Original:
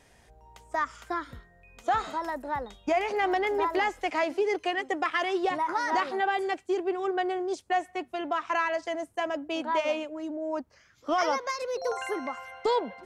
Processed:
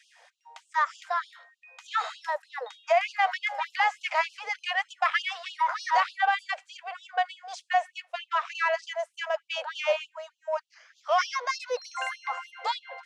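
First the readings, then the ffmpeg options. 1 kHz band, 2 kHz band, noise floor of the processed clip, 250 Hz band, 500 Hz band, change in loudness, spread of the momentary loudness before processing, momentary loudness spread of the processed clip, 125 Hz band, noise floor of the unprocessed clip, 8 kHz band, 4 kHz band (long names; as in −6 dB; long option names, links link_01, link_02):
+1.0 dB, +3.0 dB, −71 dBFS, below −40 dB, −3.5 dB, +0.5 dB, 8 LU, 10 LU, can't be measured, −60 dBFS, +1.0 dB, +4.0 dB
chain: -filter_complex "[0:a]asplit=2[link_01][link_02];[link_02]asoftclip=type=tanh:threshold=-30.5dB,volume=-9.5dB[link_03];[link_01][link_03]amix=inputs=2:normalize=0,highpass=250,lowpass=6000,afftfilt=real='re*gte(b*sr/1024,440*pow(2700/440,0.5+0.5*sin(2*PI*3.3*pts/sr)))':imag='im*gte(b*sr/1024,440*pow(2700/440,0.5+0.5*sin(2*PI*3.3*pts/sr)))':win_size=1024:overlap=0.75,volume=3dB"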